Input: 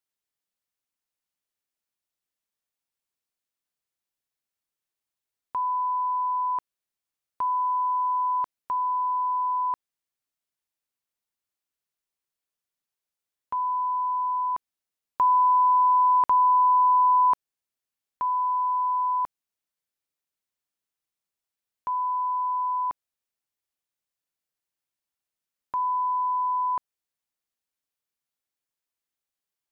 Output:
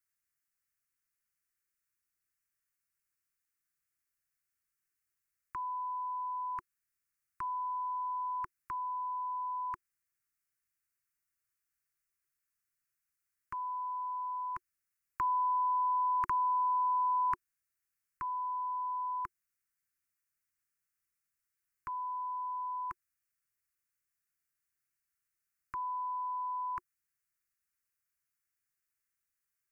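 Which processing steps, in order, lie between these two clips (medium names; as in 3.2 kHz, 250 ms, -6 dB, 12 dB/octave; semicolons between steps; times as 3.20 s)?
Chebyshev band-stop 360–1000 Hz, order 4; static phaser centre 940 Hz, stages 6; trim +4.5 dB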